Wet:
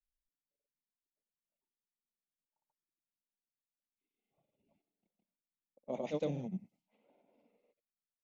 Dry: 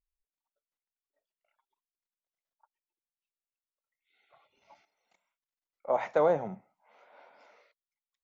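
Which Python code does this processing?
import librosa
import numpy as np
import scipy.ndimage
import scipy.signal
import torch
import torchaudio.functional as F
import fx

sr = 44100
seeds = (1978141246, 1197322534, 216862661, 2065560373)

y = fx.granulator(x, sr, seeds[0], grain_ms=100.0, per_s=20.0, spray_ms=100.0, spread_st=0)
y = fx.curve_eq(y, sr, hz=(110.0, 220.0, 720.0, 1500.0, 2700.0), db=(0, 8, -14, -23, 4))
y = fx.env_lowpass(y, sr, base_hz=670.0, full_db=-43.5)
y = y * 10.0 ** (-1.0 / 20.0)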